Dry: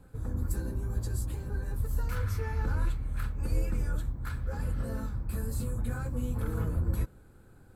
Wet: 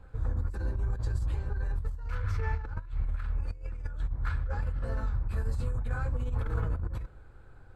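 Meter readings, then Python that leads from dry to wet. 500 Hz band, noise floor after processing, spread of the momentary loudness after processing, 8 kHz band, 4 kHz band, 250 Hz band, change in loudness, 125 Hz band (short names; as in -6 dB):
-2.0 dB, -50 dBFS, 5 LU, under -10 dB, -3.5 dB, -7.0 dB, -0.5 dB, -0.5 dB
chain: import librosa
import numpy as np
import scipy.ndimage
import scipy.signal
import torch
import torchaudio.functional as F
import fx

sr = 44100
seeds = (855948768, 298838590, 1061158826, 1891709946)

y = fx.peak_eq(x, sr, hz=220.0, db=-14.5, octaves=2.1)
y = fx.over_compress(y, sr, threshold_db=-35.0, ratio=-0.5)
y = fx.spacing_loss(y, sr, db_at_10k=23)
y = F.gain(torch.from_numpy(y), 6.0).numpy()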